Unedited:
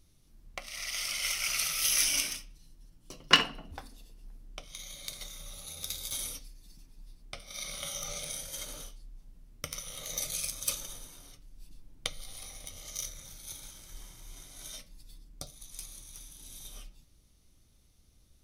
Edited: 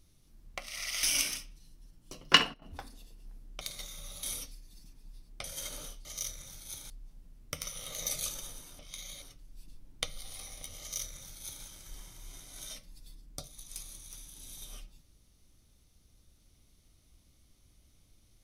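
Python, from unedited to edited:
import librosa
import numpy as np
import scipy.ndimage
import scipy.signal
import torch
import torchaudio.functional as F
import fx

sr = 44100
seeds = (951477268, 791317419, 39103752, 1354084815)

y = fx.edit(x, sr, fx.cut(start_s=1.03, length_s=0.99),
    fx.fade_down_up(start_s=3.2, length_s=0.74, db=-16.5, fade_s=0.33, curve='log'),
    fx.move(start_s=4.6, length_s=0.43, to_s=11.25),
    fx.cut(start_s=5.65, length_s=0.51),
    fx.cut(start_s=7.37, length_s=1.03),
    fx.cut(start_s=10.37, length_s=0.35),
    fx.duplicate(start_s=12.83, length_s=0.85, to_s=9.01), tone=tone)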